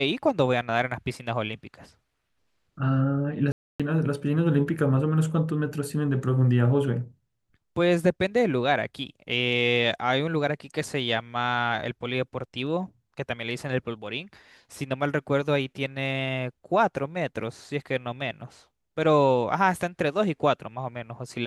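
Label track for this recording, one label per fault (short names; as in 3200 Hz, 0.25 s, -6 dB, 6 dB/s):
3.520000	3.800000	gap 0.276 s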